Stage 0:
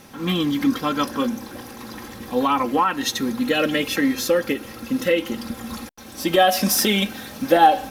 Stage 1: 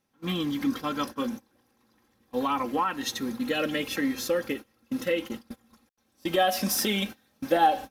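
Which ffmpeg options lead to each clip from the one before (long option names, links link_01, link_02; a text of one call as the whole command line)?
ffmpeg -i in.wav -af "agate=range=-23dB:threshold=-27dB:ratio=16:detection=peak,volume=-7.5dB" out.wav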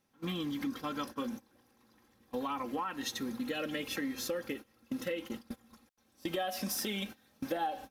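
ffmpeg -i in.wav -af "acompressor=threshold=-36dB:ratio=3" out.wav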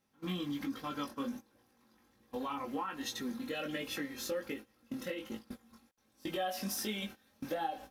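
ffmpeg -i in.wav -af "flanger=delay=18.5:depth=3.4:speed=1.3,volume=1dB" out.wav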